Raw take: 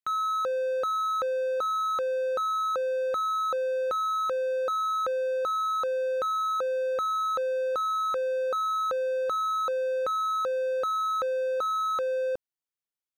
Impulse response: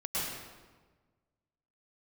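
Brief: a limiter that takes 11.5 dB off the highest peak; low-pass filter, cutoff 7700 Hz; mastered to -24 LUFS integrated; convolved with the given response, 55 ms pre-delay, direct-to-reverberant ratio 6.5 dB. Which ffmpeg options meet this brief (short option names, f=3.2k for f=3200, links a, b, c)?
-filter_complex "[0:a]lowpass=7.7k,alimiter=level_in=10.5dB:limit=-24dB:level=0:latency=1,volume=-10.5dB,asplit=2[a][b];[1:a]atrim=start_sample=2205,adelay=55[c];[b][c]afir=irnorm=-1:irlink=0,volume=-12.5dB[d];[a][d]amix=inputs=2:normalize=0,volume=13.5dB"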